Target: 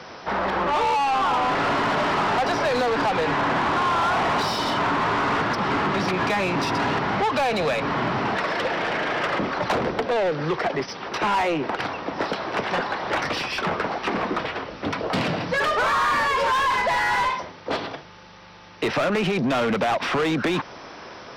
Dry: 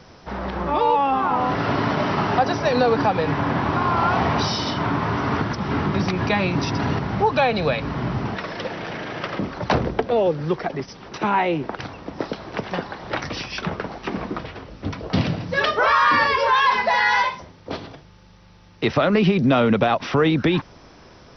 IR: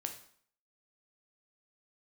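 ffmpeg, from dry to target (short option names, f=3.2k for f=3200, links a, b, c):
-filter_complex "[0:a]asplit=2[a][b];[b]highpass=f=720:p=1,volume=24dB,asoftclip=type=tanh:threshold=-6.5dB[c];[a][c]amix=inputs=2:normalize=0,lowpass=f=2.8k:p=1,volume=-6dB,acrossover=split=110|1600[d][e][f];[d]acompressor=threshold=-35dB:ratio=4[g];[e]acompressor=threshold=-14dB:ratio=4[h];[f]acompressor=threshold=-22dB:ratio=4[i];[g][h][i]amix=inputs=3:normalize=0,volume=-6dB"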